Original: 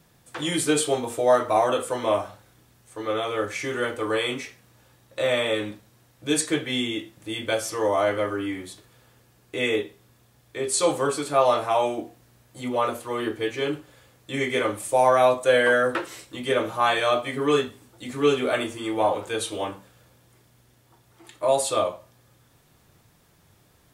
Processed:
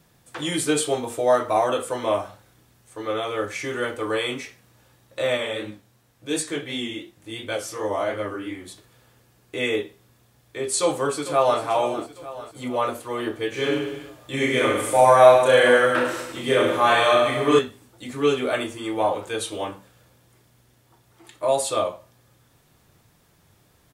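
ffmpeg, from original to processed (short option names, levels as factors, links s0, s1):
-filter_complex "[0:a]asettb=1/sr,asplit=3[s0][s1][s2];[s0]atrim=end=5.374[s3];[s1]atrim=start=5.37:end=8.68,asetpts=PTS-STARTPTS,afade=t=in:d=0.004:c=qsin,afade=t=out:st=3.306:d=0.004:c=qsin,flanger=delay=18.5:depth=7.9:speed=2.8[s4];[s2]atrim=start=8.676[s5];[s3][s4]acrossfade=d=0.004:c1=hsin:c2=qsin[s6];[s6][s5]acrossfade=d=0.004:c1=qsin:c2=hsin,asplit=2[s7][s8];[s8]afade=t=in:st=10.8:d=0.01,afade=t=out:st=11.61:d=0.01,aecho=0:1:450|900|1350|1800|2250|2700:0.251189|0.138154|0.0759846|0.0417915|0.0229853|0.0126419[s9];[s7][s9]amix=inputs=2:normalize=0,asettb=1/sr,asplit=3[s10][s11][s12];[s10]atrim=end=13.494[s13];[s11]atrim=start=13.49:end=17.59,asetpts=PTS-STARTPTS,afade=t=in:d=0.004:c=qsin,afade=t=out:st=4.096:d=0.004:c=qsin,aecho=1:1:30|63|99.3|139.2|183.2|231.5|284.6|343.1|407.4:0.794|0.631|0.501|0.398|0.316|0.251|0.2|0.158|0.126,atrim=end_sample=180810[s14];[s12]atrim=start=17.586[s15];[s13][s14]acrossfade=d=0.004:c1=hsin:c2=qsin[s16];[s16][s15]acrossfade=d=0.004:c1=qsin:c2=hsin"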